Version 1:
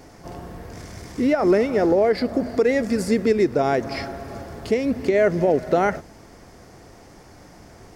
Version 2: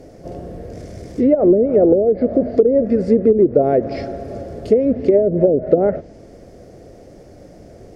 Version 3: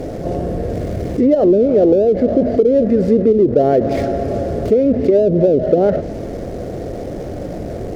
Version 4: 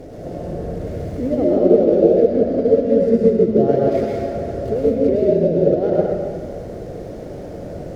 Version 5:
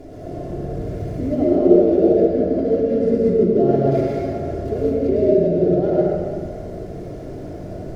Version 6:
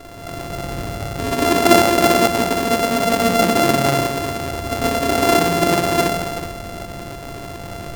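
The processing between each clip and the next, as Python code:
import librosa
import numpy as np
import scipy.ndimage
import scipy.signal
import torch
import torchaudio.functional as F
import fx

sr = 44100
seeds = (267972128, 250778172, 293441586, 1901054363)

y1 = fx.low_shelf_res(x, sr, hz=740.0, db=8.0, q=3.0)
y1 = fx.env_lowpass_down(y1, sr, base_hz=380.0, full_db=-2.0)
y1 = y1 * 10.0 ** (-4.0 / 20.0)
y2 = scipy.ndimage.median_filter(y1, 15, mode='constant')
y2 = fx.env_flatten(y2, sr, amount_pct=50)
y2 = y2 * 10.0 ** (-1.0 / 20.0)
y3 = fx.rev_plate(y2, sr, seeds[0], rt60_s=1.8, hf_ratio=0.75, predelay_ms=90, drr_db=-4.5)
y3 = fx.upward_expand(y3, sr, threshold_db=-11.0, expansion=1.5)
y3 = y3 * 10.0 ** (-6.5 / 20.0)
y4 = fx.room_shoebox(y3, sr, seeds[1], volume_m3=2600.0, walls='furnished', distance_m=3.1)
y4 = y4 * 10.0 ** (-4.5 / 20.0)
y5 = np.r_[np.sort(y4[:len(y4) // 64 * 64].reshape(-1, 64), axis=1).ravel(), y4[len(y4) // 64 * 64:]]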